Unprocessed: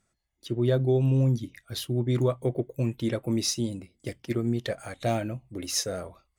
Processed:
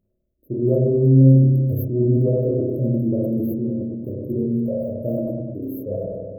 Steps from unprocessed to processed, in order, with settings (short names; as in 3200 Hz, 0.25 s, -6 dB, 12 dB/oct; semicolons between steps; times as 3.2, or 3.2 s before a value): rattling part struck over -27 dBFS, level -33 dBFS; reverb removal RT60 1.1 s; brick-wall FIR band-stop 660–12000 Hz; spring tank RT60 1.3 s, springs 30/49 ms, chirp 45 ms, DRR -4 dB; sustainer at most 26 dB/s; gain +2 dB